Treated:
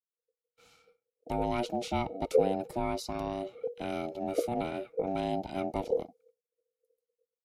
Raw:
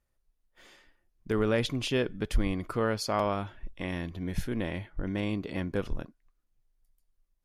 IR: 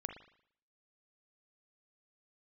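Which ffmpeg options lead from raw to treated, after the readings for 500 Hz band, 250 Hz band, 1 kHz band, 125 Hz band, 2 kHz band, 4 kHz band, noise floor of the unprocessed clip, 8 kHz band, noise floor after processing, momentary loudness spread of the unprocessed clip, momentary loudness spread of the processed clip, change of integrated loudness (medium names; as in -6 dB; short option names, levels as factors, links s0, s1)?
+1.5 dB, -3.5 dB, +2.5 dB, -8.0 dB, -8.0 dB, -6.5 dB, -76 dBFS, -4.0 dB, under -85 dBFS, 9 LU, 8 LU, -1.5 dB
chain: -filter_complex "[0:a]agate=range=0.0224:threshold=0.00126:ratio=3:detection=peak,acrossover=split=210|400|2800[s0][s1][s2][s3];[s2]asuperpass=centerf=1800:order=12:qfactor=5.6[s4];[s3]alimiter=level_in=2.37:limit=0.0631:level=0:latency=1:release=374,volume=0.422[s5];[s0][s1][s4][s5]amix=inputs=4:normalize=0,aeval=exprs='val(0)*sin(2*PI*480*n/s)':c=same,dynaudnorm=f=570:g=5:m=1.5"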